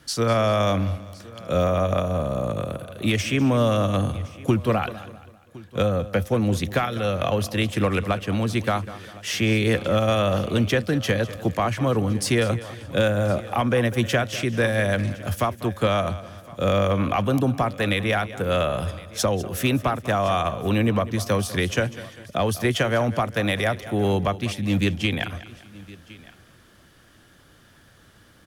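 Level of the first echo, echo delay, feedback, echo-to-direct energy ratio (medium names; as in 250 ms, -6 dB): -16.0 dB, 198 ms, no regular repeats, -14.0 dB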